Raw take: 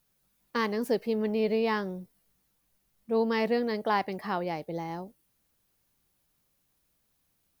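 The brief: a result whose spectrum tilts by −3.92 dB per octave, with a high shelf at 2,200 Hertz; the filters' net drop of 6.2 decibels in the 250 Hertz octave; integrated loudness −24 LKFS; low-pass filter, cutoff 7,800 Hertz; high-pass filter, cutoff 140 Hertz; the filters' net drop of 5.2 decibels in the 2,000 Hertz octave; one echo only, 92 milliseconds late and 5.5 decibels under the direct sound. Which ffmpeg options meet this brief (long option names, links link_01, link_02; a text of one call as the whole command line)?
ffmpeg -i in.wav -af "highpass=140,lowpass=7800,equalizer=frequency=250:width_type=o:gain=-6.5,equalizer=frequency=2000:width_type=o:gain=-4,highshelf=frequency=2200:gain=-4.5,aecho=1:1:92:0.531,volume=7.5dB" out.wav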